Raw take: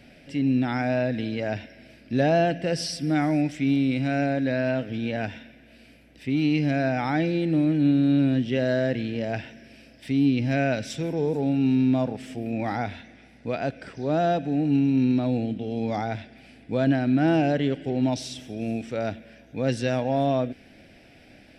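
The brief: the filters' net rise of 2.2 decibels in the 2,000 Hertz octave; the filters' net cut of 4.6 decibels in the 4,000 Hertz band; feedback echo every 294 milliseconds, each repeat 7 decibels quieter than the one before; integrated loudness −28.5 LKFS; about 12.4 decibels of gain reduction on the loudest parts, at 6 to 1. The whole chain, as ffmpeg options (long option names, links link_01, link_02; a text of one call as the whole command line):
ffmpeg -i in.wav -af "equalizer=frequency=2000:width_type=o:gain=5,equalizer=frequency=4000:width_type=o:gain=-8.5,acompressor=threshold=-31dB:ratio=6,aecho=1:1:294|588|882|1176|1470:0.447|0.201|0.0905|0.0407|0.0183,volume=6dB" out.wav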